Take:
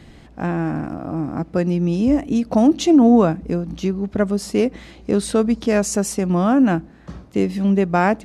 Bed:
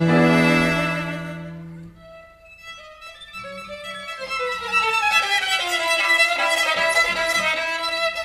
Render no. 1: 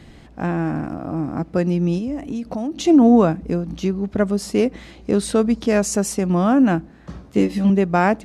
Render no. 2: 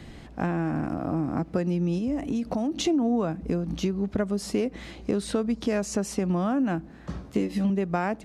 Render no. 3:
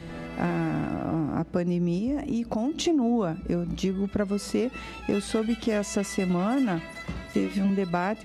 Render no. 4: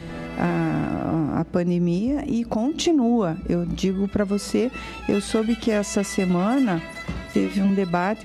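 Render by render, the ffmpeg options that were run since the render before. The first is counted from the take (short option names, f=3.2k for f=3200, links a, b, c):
-filter_complex "[0:a]asettb=1/sr,asplit=3[a][b][c];[a]atrim=end=1.984[d];[b]atrim=start=1.98:end=2.85,asetpts=PTS-STARTPTS,afade=t=in:d=0.004:c=qsin,afade=t=out:st=0.866:d=0.004:c=qsin,acompressor=threshold=-24dB:ratio=4:attack=3.2:release=140:knee=1:detection=peak[e];[c]atrim=start=2.846[f];[d][e]acrossfade=d=0.004:c1=hsin:c2=qsin[g];[g][f]acrossfade=d=0.004:c1=qsin:c2=hsin,asettb=1/sr,asplit=3[h][i][j];[h]atrim=end=7.234[k];[i]atrim=start=7.23:end=7.7,asetpts=PTS-STARTPTS,afade=t=in:d=0.004:c=qsin,afade=t=out:st=0.466:d=0.004:c=qsin,asplit=2[l][m];[m]adelay=14,volume=-2.5dB[n];[l][n]amix=inputs=2:normalize=0,atrim=end_sample=20727[o];[j]atrim=start=7.696[p];[k][o]acrossfade=d=0.004:c1=hsin:c2=qsin[q];[q][p]acrossfade=d=0.004:c1=qsin:c2=hsin"
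-filter_complex "[0:a]acrossover=split=430|5300[a][b][c];[c]alimiter=level_in=3dB:limit=-24dB:level=0:latency=1:release=297,volume=-3dB[d];[a][b][d]amix=inputs=3:normalize=0,acompressor=threshold=-23dB:ratio=5"
-filter_complex "[1:a]volume=-23dB[a];[0:a][a]amix=inputs=2:normalize=0"
-af "volume=4.5dB"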